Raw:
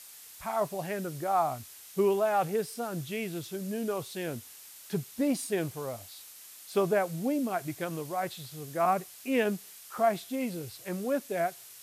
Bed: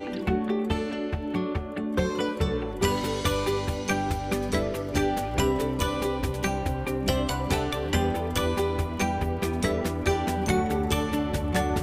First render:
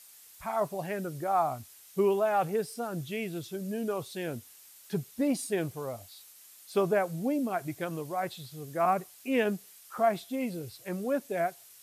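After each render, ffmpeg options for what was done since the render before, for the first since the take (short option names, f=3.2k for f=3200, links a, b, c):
-af "afftdn=nr=6:nf=-50"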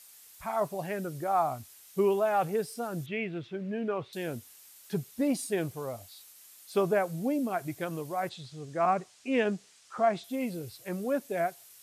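-filter_complex "[0:a]asettb=1/sr,asplit=3[a][b][c];[a]atrim=end=3.064[d];[b]atrim=start=3.06:end=4.13,asetpts=PTS-STARTPTS,afade=t=in:d=0.004:c=qsin,afade=t=out:st=1.066:d=0.004:c=qsin,lowpass=f=2.3k:t=q:w=1.6[e];[c]atrim=start=4.126[f];[d][e]acrossfade=d=0.004:c1=hsin:c2=qsin[g];[g][f]acrossfade=d=0.004:c1=qsin:c2=hsin,asettb=1/sr,asplit=3[h][i][j];[h]atrim=end=8.294[k];[i]atrim=start=8.29:end=10.24,asetpts=PTS-STARTPTS,afade=t=in:d=0.004:c=qsin,afade=t=out:st=1.946:d=0.004:c=qsin,lowpass=f=7.8k:w=0.5412,lowpass=f=7.8k:w=1.3066[l];[j]atrim=start=10.236[m];[k][l]acrossfade=d=0.004:c1=hsin:c2=qsin[n];[n][m]acrossfade=d=0.004:c1=qsin:c2=hsin"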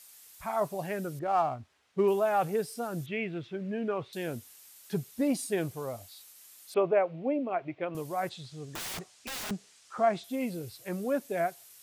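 -filter_complex "[0:a]asettb=1/sr,asplit=3[a][b][c];[a]atrim=end=1.194[d];[b]atrim=start=1.19:end=2.08,asetpts=PTS-STARTPTS,afade=t=in:d=0.004:c=qsin,afade=t=out:st=0.886:d=0.004:c=qsin,adynamicsmooth=sensitivity=6:basefreq=2.2k[e];[c]atrim=start=2.076[f];[d][e]acrossfade=d=0.004:c1=hsin:c2=qsin[g];[g][f]acrossfade=d=0.004:c1=qsin:c2=hsin,asettb=1/sr,asplit=3[h][i][j];[h]atrim=end=6.744[k];[i]atrim=start=6.74:end=7.95,asetpts=PTS-STARTPTS,afade=t=in:d=0.004:c=qsin,afade=t=out:st=1.206:d=0.004:c=qsin,highpass=190,equalizer=f=210:t=q:w=4:g=-8,equalizer=f=570:t=q:w=4:g=4,equalizer=f=1.6k:t=q:w=4:g=-6,equalizer=f=2.5k:t=q:w=4:g=4,lowpass=f=2.8k:w=0.5412,lowpass=f=2.8k:w=1.3066[l];[j]atrim=start=7.946[m];[k][l]acrossfade=d=0.004:c1=hsin:c2=qsin[n];[n][m]acrossfade=d=0.004:c1=qsin:c2=hsin,asettb=1/sr,asplit=3[o][p][q];[o]atrim=end=8.694[r];[p]atrim=start=8.69:end=9.51,asetpts=PTS-STARTPTS,afade=t=in:d=0.004:c=qsin,afade=t=out:st=0.816:d=0.004:c=qsin,aeval=exprs='(mod(44.7*val(0)+1,2)-1)/44.7':c=same[s];[q]atrim=start=9.506[t];[r][s]acrossfade=d=0.004:c1=hsin:c2=qsin[u];[u][t]acrossfade=d=0.004:c1=qsin:c2=hsin"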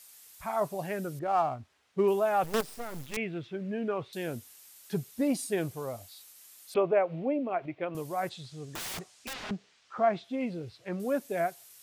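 -filter_complex "[0:a]asettb=1/sr,asplit=3[a][b][c];[a]atrim=end=2.444[d];[b]atrim=start=2.44:end=3.17,asetpts=PTS-STARTPTS,afade=t=in:d=0.004:c=qsin,afade=t=out:st=0.726:d=0.004:c=qsin,acrusher=bits=5:dc=4:mix=0:aa=0.000001[e];[c]atrim=start=3.166[f];[d][e]acrossfade=d=0.004:c1=hsin:c2=qsin[g];[g][f]acrossfade=d=0.004:c1=qsin:c2=hsin,asettb=1/sr,asplit=3[h][i][j];[h]atrim=end=6.754[k];[i]atrim=start=6.75:end=7.66,asetpts=PTS-STARTPTS,afade=t=in:d=0.004:c=qsin,afade=t=out:st=0.906:d=0.004:c=qsin,acompressor=mode=upward:threshold=-30dB:ratio=2.5:attack=3.2:release=140:knee=2.83:detection=peak[l];[j]atrim=start=7.656[m];[k][l]acrossfade=d=0.004:c1=hsin:c2=qsin[n];[n][m]acrossfade=d=0.004:c1=qsin:c2=hsin,asettb=1/sr,asplit=3[o][p][q];[o]atrim=end=9.334[r];[p]atrim=start=9.33:end=11,asetpts=PTS-STARTPTS,afade=t=in:d=0.004:c=qsin,afade=t=out:st=1.666:d=0.004:c=qsin,lowpass=3.8k[s];[q]atrim=start=10.996[t];[r][s]acrossfade=d=0.004:c1=hsin:c2=qsin[u];[u][t]acrossfade=d=0.004:c1=qsin:c2=hsin"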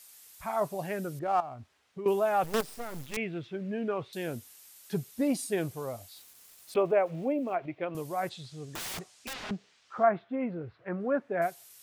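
-filter_complex "[0:a]asettb=1/sr,asplit=3[a][b][c];[a]atrim=end=1.404[d];[b]atrim=start=1.4:end=2.06,asetpts=PTS-STARTPTS,afade=t=in:d=0.004:c=qsin,afade=t=out:st=0.656:d=0.004:c=qsin,acompressor=threshold=-40dB:ratio=3:attack=3.2:release=140:knee=1:detection=peak[e];[c]atrim=start=2.056[f];[d][e]acrossfade=d=0.004:c1=hsin:c2=qsin[g];[g][f]acrossfade=d=0.004:c1=qsin:c2=hsin,asettb=1/sr,asplit=3[h][i][j];[h]atrim=end=6.164[k];[i]atrim=start=6.16:end=7.56,asetpts=PTS-STARTPTS,afade=t=in:d=0.004:c=qsin,afade=t=out:st=1.396:d=0.004:c=qsin,aeval=exprs='val(0)*gte(abs(val(0)),0.00251)':c=same[l];[j]atrim=start=7.556[m];[k][l]acrossfade=d=0.004:c1=hsin:c2=qsin[n];[n][m]acrossfade=d=0.004:c1=qsin:c2=hsin,asettb=1/sr,asplit=3[o][p][q];[o]atrim=end=10.034[r];[p]atrim=start=10.03:end=11.42,asetpts=PTS-STARTPTS,afade=t=in:d=0.004:c=qsin,afade=t=out:st=1.386:d=0.004:c=qsin,lowpass=f=1.5k:t=q:w=1.8[s];[q]atrim=start=11.416[t];[r][s]acrossfade=d=0.004:c1=hsin:c2=qsin[u];[u][t]acrossfade=d=0.004:c1=qsin:c2=hsin"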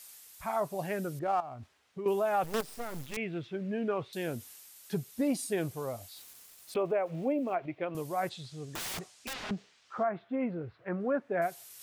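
-af "alimiter=limit=-21dB:level=0:latency=1:release=181,areverse,acompressor=mode=upward:threshold=-45dB:ratio=2.5,areverse"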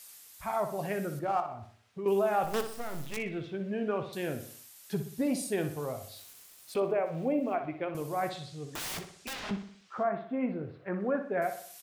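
-filter_complex "[0:a]asplit=2[a][b];[b]adelay=20,volume=-13dB[c];[a][c]amix=inputs=2:normalize=0,asplit=2[d][e];[e]adelay=61,lowpass=f=5k:p=1,volume=-9dB,asplit=2[f][g];[g]adelay=61,lowpass=f=5k:p=1,volume=0.48,asplit=2[h][i];[i]adelay=61,lowpass=f=5k:p=1,volume=0.48,asplit=2[j][k];[k]adelay=61,lowpass=f=5k:p=1,volume=0.48,asplit=2[l][m];[m]adelay=61,lowpass=f=5k:p=1,volume=0.48[n];[f][h][j][l][n]amix=inputs=5:normalize=0[o];[d][o]amix=inputs=2:normalize=0"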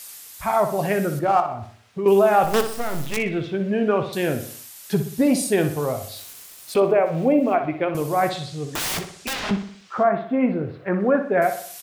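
-af "volume=11.5dB"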